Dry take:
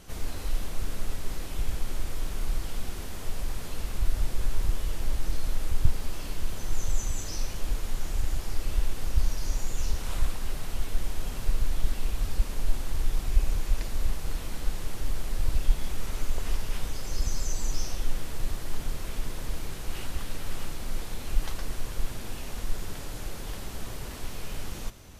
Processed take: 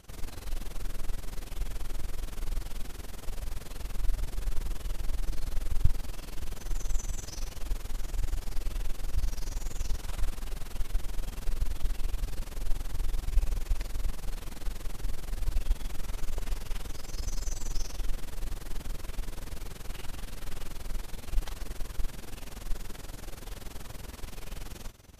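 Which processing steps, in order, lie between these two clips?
AM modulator 21 Hz, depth 75%; trim -1.5 dB

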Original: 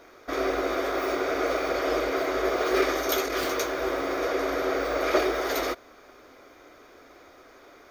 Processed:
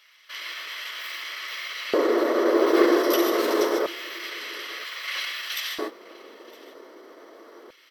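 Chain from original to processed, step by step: gated-style reverb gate 170 ms rising, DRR 4 dB; LFO high-pass square 0.26 Hz 430–2900 Hz; on a send: delay 971 ms -23 dB; on the sum: pitch shift -2 st

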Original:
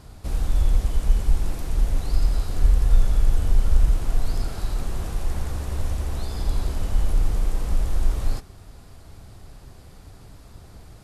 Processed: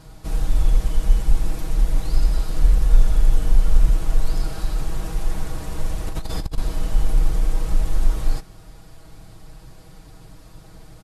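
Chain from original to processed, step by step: comb 6.3 ms, depth 76%; 6.06–6.58 s: compressor with a negative ratio -24 dBFS, ratio -0.5

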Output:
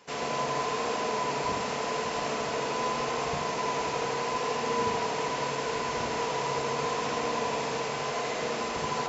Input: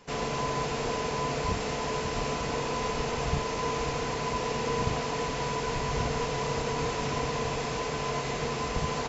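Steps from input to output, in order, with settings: high-pass 380 Hz 6 dB/octave; on a send: tape echo 79 ms, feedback 89%, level -4 dB, low-pass 2.2 kHz

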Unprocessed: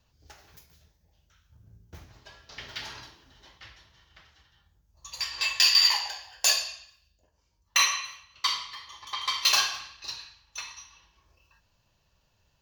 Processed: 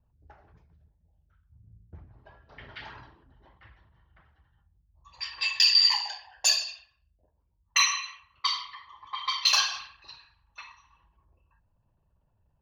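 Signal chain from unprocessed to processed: resonances exaggerated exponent 1.5; level-controlled noise filter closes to 1.1 kHz, open at -22.5 dBFS

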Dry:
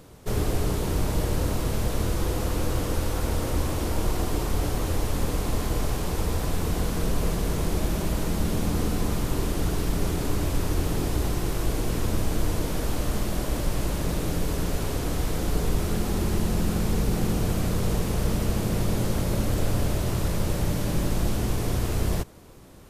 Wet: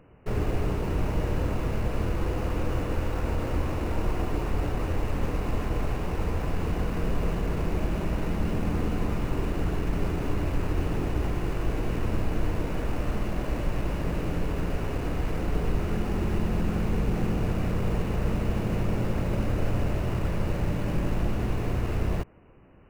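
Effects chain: brick-wall FIR low-pass 3 kHz; in parallel at -5 dB: bit crusher 6-bit; on the sum: trim -5.5 dB

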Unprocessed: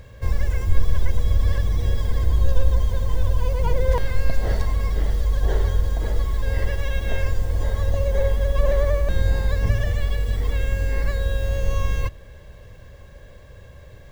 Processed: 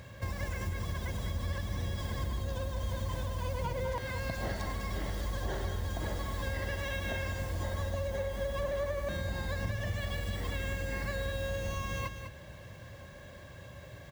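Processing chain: high-pass 110 Hz 12 dB/octave; peaking EQ 450 Hz -13.5 dB 0.21 oct; compression, threshold -32 dBFS, peak gain reduction 11.5 dB; delay 202 ms -8 dB

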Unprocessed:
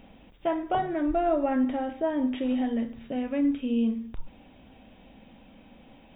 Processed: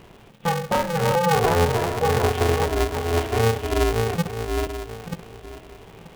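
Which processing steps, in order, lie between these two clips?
backward echo that repeats 467 ms, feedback 43%, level -4 dB; polarity switched at an audio rate 170 Hz; trim +4.5 dB

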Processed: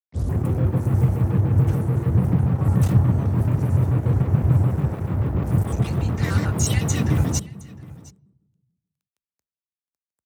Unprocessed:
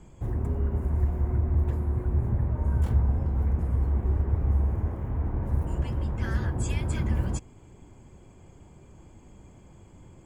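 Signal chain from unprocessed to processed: tape start-up on the opening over 0.38 s; treble shelf 4.4 kHz +11.5 dB; crossover distortion -39.5 dBFS; frequency shift +40 Hz; delay 712 ms -21.5 dB; on a send at -21 dB: reverberation RT60 1.2 s, pre-delay 3 ms; on the sum: vibrato with a chosen wave square 6.9 Hz, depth 250 cents; trim +7.5 dB

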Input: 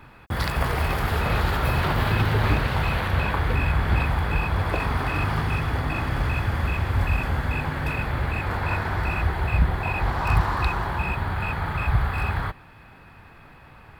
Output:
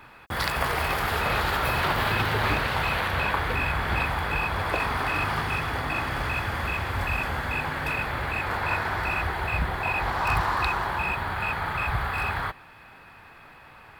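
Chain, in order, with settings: bass shelf 330 Hz -11.5 dB; trim +2.5 dB

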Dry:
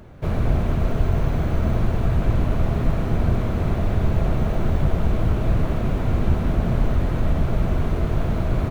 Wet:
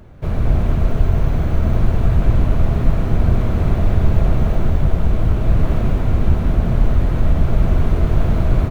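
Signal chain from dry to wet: bass shelf 93 Hz +6 dB; level rider; trim -1 dB

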